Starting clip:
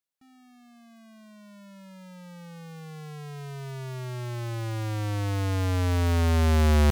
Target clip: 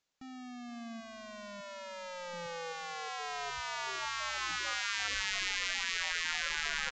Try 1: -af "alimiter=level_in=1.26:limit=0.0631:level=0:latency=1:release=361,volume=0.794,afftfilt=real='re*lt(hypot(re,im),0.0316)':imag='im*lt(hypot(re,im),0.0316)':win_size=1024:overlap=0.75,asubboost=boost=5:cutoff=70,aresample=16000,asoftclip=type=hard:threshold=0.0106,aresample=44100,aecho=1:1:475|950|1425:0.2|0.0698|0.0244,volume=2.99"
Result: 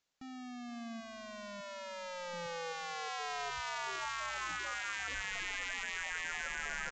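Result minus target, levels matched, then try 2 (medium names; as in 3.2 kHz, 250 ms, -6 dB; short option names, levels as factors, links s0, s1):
hard clipper: distortion +12 dB
-af "alimiter=level_in=1.26:limit=0.0631:level=0:latency=1:release=361,volume=0.794,afftfilt=real='re*lt(hypot(re,im),0.0316)':imag='im*lt(hypot(re,im),0.0316)':win_size=1024:overlap=0.75,asubboost=boost=5:cutoff=70,aresample=16000,asoftclip=type=hard:threshold=0.0282,aresample=44100,aecho=1:1:475|950|1425:0.2|0.0698|0.0244,volume=2.99"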